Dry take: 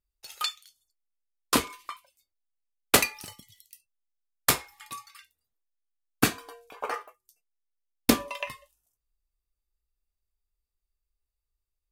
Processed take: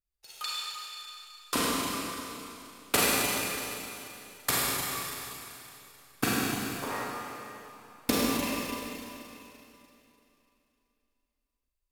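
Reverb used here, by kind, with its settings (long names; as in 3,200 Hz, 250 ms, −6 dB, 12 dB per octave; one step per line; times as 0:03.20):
four-comb reverb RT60 3 s, combs from 33 ms, DRR −6.5 dB
level −7.5 dB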